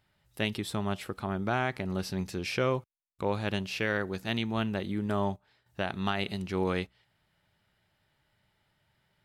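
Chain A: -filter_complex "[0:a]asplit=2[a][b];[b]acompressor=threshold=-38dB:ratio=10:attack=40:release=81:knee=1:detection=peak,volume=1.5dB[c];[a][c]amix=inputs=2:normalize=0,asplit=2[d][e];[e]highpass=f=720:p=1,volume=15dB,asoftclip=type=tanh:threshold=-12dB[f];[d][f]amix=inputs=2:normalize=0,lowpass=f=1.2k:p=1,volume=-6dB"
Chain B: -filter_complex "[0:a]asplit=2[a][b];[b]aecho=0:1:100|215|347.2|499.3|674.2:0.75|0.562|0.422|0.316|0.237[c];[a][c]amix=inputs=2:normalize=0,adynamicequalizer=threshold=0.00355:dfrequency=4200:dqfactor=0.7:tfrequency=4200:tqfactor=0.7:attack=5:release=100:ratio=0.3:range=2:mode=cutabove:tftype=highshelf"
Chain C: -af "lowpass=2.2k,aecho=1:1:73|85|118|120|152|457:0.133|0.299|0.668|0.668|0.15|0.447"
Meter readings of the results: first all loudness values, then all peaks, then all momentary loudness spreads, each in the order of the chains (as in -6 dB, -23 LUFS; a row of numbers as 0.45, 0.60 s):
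-27.5, -29.5, -30.0 LUFS; -14.0, -14.0, -13.5 dBFS; 5, 7, 6 LU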